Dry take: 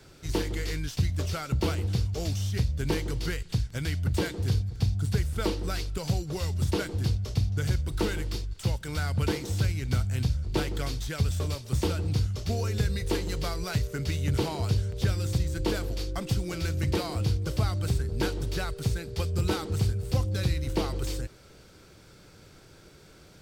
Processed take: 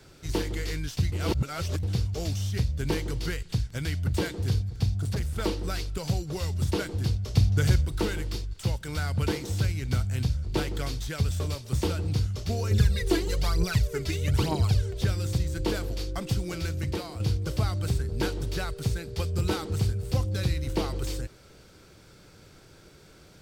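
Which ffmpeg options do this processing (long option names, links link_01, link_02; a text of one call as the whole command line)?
ffmpeg -i in.wav -filter_complex "[0:a]asettb=1/sr,asplit=3[link_01][link_02][link_03];[link_01]atrim=end=4.964[link_04];[link_02]atrim=start=4.96:end=5.45,asetpts=PTS-STARTPTS,afade=type=in:duration=0.004:curve=qsin,afade=type=out:start_time=0.486:duration=0.004:curve=qsin,volume=24.5dB,asoftclip=hard,volume=-24.5dB[link_05];[link_03]atrim=start=5.446[link_06];[link_04][link_05]acrossfade=duration=0.004:curve1=hsin:curve2=qsin[link_07];[link_07][link_06]acrossfade=duration=0.004:curve1=qsin:curve2=hsin,asettb=1/sr,asplit=3[link_08][link_09][link_10];[link_08]atrim=end=7.344[link_11];[link_09]atrim=start=7.34:end=7.86,asetpts=PTS-STARTPTS,afade=type=in:duration=0.004:curve=qsin,afade=type=out:start_time=0.516:duration=0.004:curve=qsin,acontrast=32[link_12];[link_10]atrim=start=7.856[link_13];[link_11][link_12]acrossfade=duration=0.004:curve1=hsin:curve2=qsin[link_14];[link_14][link_13]acrossfade=duration=0.004:curve1=qsin:curve2=hsin,asettb=1/sr,asplit=3[link_15][link_16][link_17];[link_15]atrim=end=12.714[link_18];[link_16]atrim=start=12.71:end=15.02,asetpts=PTS-STARTPTS,afade=type=in:duration=0.004:curve=qsin,afade=type=out:start_time=2.306:duration=0.004:curve=qsin,aphaser=in_gain=1:out_gain=1:delay=3.1:decay=0.66:speed=1.1:type=triangular[link_19];[link_17]atrim=start=15.016[link_20];[link_18][link_19]acrossfade=duration=0.004:curve1=hsin:curve2=qsin[link_21];[link_21][link_20]acrossfade=duration=0.004:curve1=qsin:curve2=hsin,asplit=4[link_22][link_23][link_24][link_25];[link_22]atrim=end=1.122[link_26];[link_23]atrim=start=1.118:end=1.832,asetpts=PTS-STARTPTS,areverse[link_27];[link_24]atrim=start=1.828:end=17.2,asetpts=PTS-STARTPTS,afade=type=out:start_time=14.702:duration=0.67:silence=0.421697[link_28];[link_25]atrim=start=17.2,asetpts=PTS-STARTPTS,afade=type=in:duration=0.004:curve=hsin:silence=0.421697[link_29];[link_26][link_27]acrossfade=duration=0.004:curve1=hsin:curve2=hsin[link_30];[link_28][link_29]concat=n=2:v=0:a=1[link_31];[link_30][link_31]acrossfade=duration=0.004:curve1=hsin:curve2=hsin" out.wav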